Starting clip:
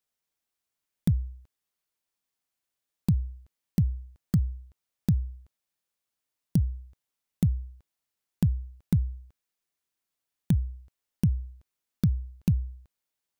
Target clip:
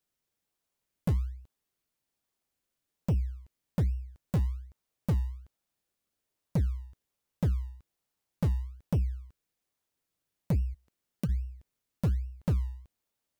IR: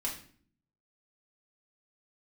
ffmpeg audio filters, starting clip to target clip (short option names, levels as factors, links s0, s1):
-filter_complex "[0:a]asplit=3[s0][s1][s2];[s0]afade=t=out:st=10.73:d=0.02[s3];[s1]highpass=230,afade=t=in:st=10.73:d=0.02,afade=t=out:st=11.28:d=0.02[s4];[s2]afade=t=in:st=11.28:d=0.02[s5];[s3][s4][s5]amix=inputs=3:normalize=0,asplit=2[s6][s7];[s7]acrusher=samples=32:mix=1:aa=0.000001:lfo=1:lforange=32:lforate=1.2,volume=0.335[s8];[s6][s8]amix=inputs=2:normalize=0,asoftclip=type=tanh:threshold=0.075"